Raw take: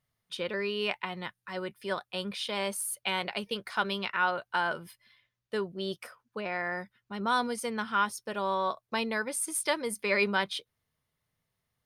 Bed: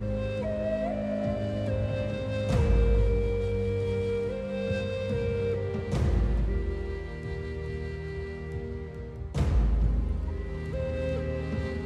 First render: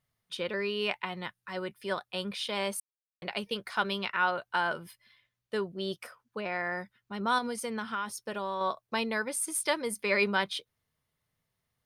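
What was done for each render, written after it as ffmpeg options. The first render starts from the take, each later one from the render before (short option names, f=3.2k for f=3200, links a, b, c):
-filter_complex "[0:a]asettb=1/sr,asplit=3[a][b][c];[a]atrim=end=7.384[d];[b]atrim=start=7.38:end=8.61,asetpts=PTS-STARTPTS,afade=t=in:d=0.004:c=qsin,afade=t=out:st=1.226:d=0.004:c=qsin,acompressor=threshold=-29dB:ratio=6:attack=3.2:release=140:knee=1:detection=peak[e];[c]atrim=start=8.606[f];[d][e]acrossfade=d=0.004:c1=hsin:c2=qsin[g];[g][f]acrossfade=d=0.004:c1=qsin:c2=hsin,asplit=3[h][i][j];[h]atrim=end=2.8,asetpts=PTS-STARTPTS,afade=t=out:st=2.796:d=0.004:c=hsin[k];[i]atrim=start=2.8:end=3.22,asetpts=PTS-STARTPTS,volume=0[l];[j]atrim=start=3.22,asetpts=PTS-STARTPTS,afade=t=in:d=0.004:c=hsin[m];[k][l][m]concat=n=3:v=0:a=1"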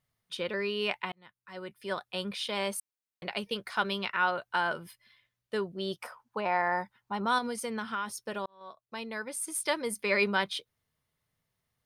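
-filter_complex "[0:a]asettb=1/sr,asplit=3[a][b][c];[a]atrim=end=6.004[d];[b]atrim=start=6:end=7.25,asetpts=PTS-STARTPTS,afade=t=in:d=0.004:c=qsin,afade=t=out:st=1.246:d=0.004:c=qsin,equalizer=f=890:t=o:w=0.66:g=13.5[e];[c]atrim=start=7.246[f];[d][e]acrossfade=d=0.004:c1=hsin:c2=qsin[g];[g][f]acrossfade=d=0.004:c1=qsin:c2=hsin,asplit=3[h][i][j];[h]atrim=end=1.12,asetpts=PTS-STARTPTS,afade=t=out:st=1.116:d=0.004:c=hsin[k];[i]atrim=start=1.12:end=8.46,asetpts=PTS-STARTPTS,afade=t=in:d=0.94,afade=t=out:st=7.336:d=0.004:c=hsin[l];[j]atrim=start=8.46,asetpts=PTS-STARTPTS,afade=t=in:d=1.38[m];[k][l][m]concat=n=3:v=0:a=1"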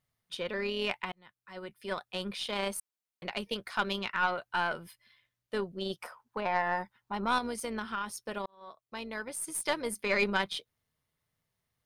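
-af "tremolo=f=170:d=0.333,aeval=exprs='0.178*(cos(1*acos(clip(val(0)/0.178,-1,1)))-cos(1*PI/2))+0.0126*(cos(4*acos(clip(val(0)/0.178,-1,1)))-cos(4*PI/2))':c=same"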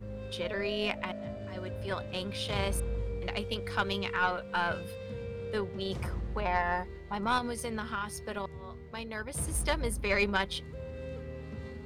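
-filter_complex "[1:a]volume=-10.5dB[a];[0:a][a]amix=inputs=2:normalize=0"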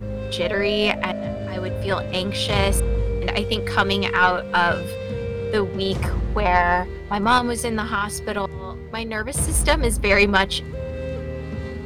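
-af "volume=12dB,alimiter=limit=-3dB:level=0:latency=1"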